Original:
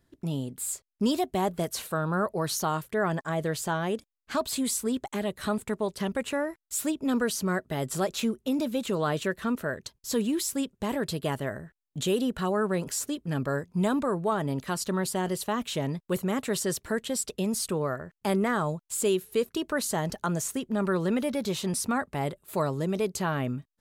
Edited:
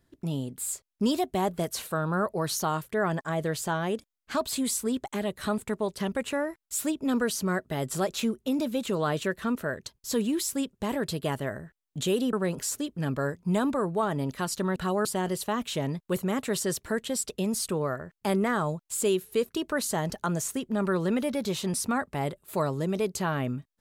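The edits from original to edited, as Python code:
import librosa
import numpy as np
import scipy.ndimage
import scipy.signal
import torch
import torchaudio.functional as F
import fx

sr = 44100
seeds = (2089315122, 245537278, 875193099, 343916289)

y = fx.edit(x, sr, fx.move(start_s=12.33, length_s=0.29, to_s=15.05), tone=tone)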